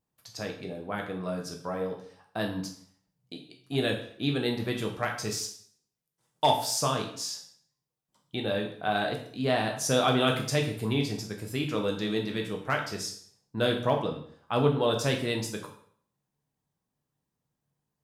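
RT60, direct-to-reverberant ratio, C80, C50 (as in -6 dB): 0.55 s, 1.5 dB, 11.5 dB, 8.0 dB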